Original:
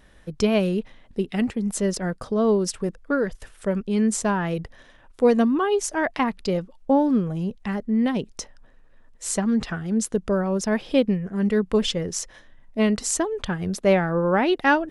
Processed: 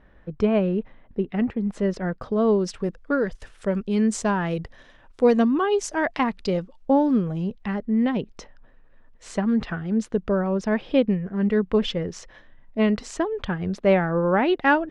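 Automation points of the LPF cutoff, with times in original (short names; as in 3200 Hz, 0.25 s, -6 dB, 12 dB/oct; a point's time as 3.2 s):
1.33 s 1800 Hz
2.54 s 3800 Hz
3.19 s 6500 Hz
7.07 s 6500 Hz
7.95 s 3200 Hz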